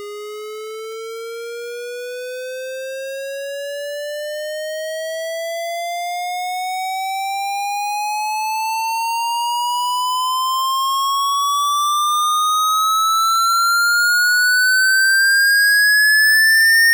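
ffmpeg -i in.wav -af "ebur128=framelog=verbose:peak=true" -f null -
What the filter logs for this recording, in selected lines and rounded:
Integrated loudness:
  I:         -15.8 LUFS
  Threshold: -26.6 LUFS
Loudness range:
  LRA:        14.9 LU
  Threshold: -37.5 LUFS
  LRA low:   -27.0 LUFS
  LRA high:  -12.2 LUFS
True peak:
  Peak:      -10.2 dBFS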